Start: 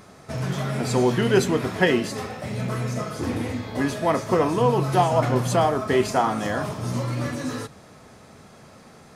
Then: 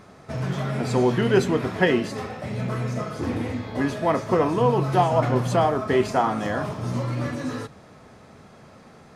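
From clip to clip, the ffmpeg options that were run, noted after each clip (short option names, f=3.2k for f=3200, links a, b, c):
-af "highshelf=f=5.4k:g=-10"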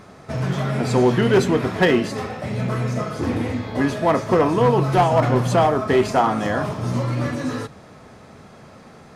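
-af "volume=13.5dB,asoftclip=hard,volume=-13.5dB,volume=4dB"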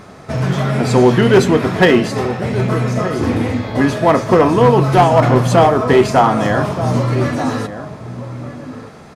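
-filter_complex "[0:a]asplit=2[a][b];[b]adelay=1224,volume=-11dB,highshelf=f=4k:g=-27.6[c];[a][c]amix=inputs=2:normalize=0,volume=6dB"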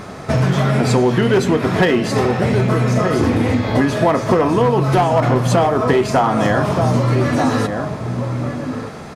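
-af "acompressor=threshold=-18dB:ratio=6,volume=6dB"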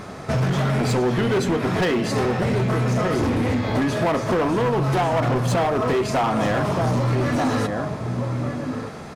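-af "volume=13.5dB,asoftclip=hard,volume=-13.5dB,volume=-3.5dB"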